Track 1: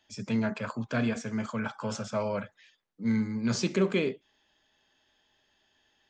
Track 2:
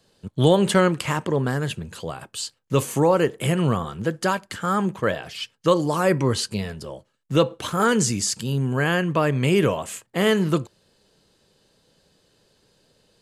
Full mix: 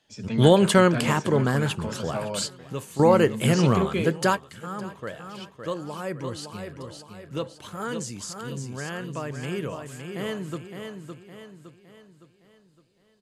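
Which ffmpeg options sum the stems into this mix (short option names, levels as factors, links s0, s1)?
-filter_complex "[0:a]volume=0.944,asplit=2[s0][s1];[1:a]volume=1.06,asplit=2[s2][s3];[s3]volume=0.106[s4];[s1]apad=whole_len=582898[s5];[s2][s5]sidechaingate=range=0.224:threshold=0.001:ratio=16:detection=peak[s6];[s4]aecho=0:1:562|1124|1686|2248|2810|3372:1|0.45|0.202|0.0911|0.041|0.0185[s7];[s0][s6][s7]amix=inputs=3:normalize=0"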